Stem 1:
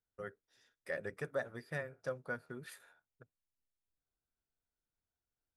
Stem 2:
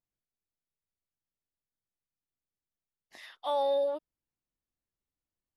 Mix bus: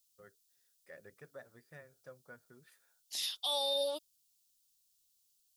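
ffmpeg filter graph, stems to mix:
ffmpeg -i stem1.wav -i stem2.wav -filter_complex "[0:a]volume=-13.5dB[link_01];[1:a]aexciter=amount=11.9:drive=7.3:freq=2900,volume=-5dB[link_02];[link_01][link_02]amix=inputs=2:normalize=0,alimiter=level_in=1dB:limit=-24dB:level=0:latency=1,volume=-1dB" out.wav

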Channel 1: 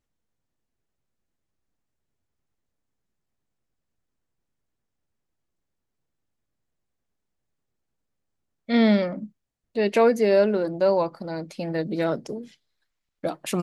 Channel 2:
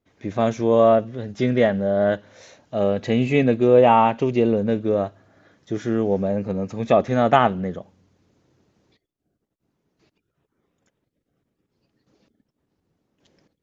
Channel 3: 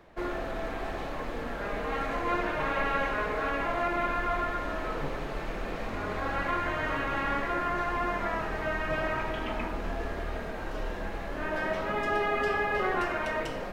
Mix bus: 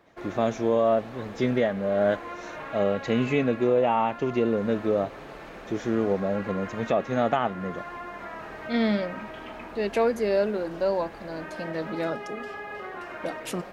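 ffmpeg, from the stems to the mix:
ffmpeg -i stem1.wav -i stem2.wav -i stem3.wav -filter_complex "[0:a]volume=-4.5dB[link_01];[1:a]volume=-2.5dB[link_02];[2:a]acompressor=threshold=-30dB:ratio=6,volume=-3.5dB[link_03];[link_01][link_02][link_03]amix=inputs=3:normalize=0,highpass=frequency=140:poles=1,alimiter=limit=-13dB:level=0:latency=1:release=455" out.wav

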